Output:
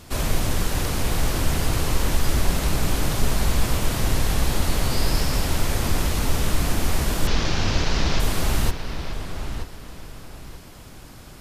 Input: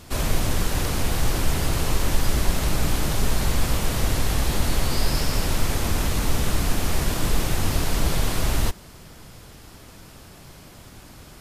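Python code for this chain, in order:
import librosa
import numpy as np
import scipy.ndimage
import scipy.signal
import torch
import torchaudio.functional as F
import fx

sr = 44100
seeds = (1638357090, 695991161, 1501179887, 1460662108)

p1 = fx.delta_mod(x, sr, bps=32000, step_db=-20.5, at=(7.27, 8.2))
y = p1 + fx.echo_filtered(p1, sr, ms=931, feedback_pct=29, hz=3700.0, wet_db=-8, dry=0)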